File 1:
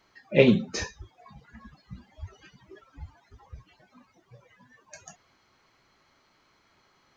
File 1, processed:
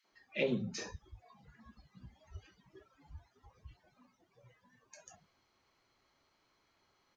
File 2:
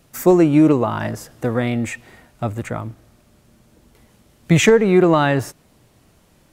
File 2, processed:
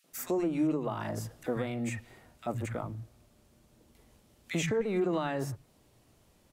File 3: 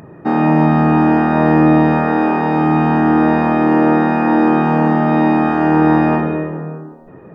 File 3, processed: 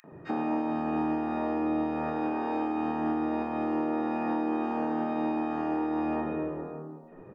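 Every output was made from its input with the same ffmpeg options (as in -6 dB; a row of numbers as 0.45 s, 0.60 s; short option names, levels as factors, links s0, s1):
-filter_complex "[0:a]acrossover=split=170|1600[s0][s1][s2];[s1]adelay=40[s3];[s0]adelay=120[s4];[s4][s3][s2]amix=inputs=3:normalize=0,alimiter=limit=0.224:level=0:latency=1:release=444,volume=0.376"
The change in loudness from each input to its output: -15.0 LU, -16.0 LU, -17.0 LU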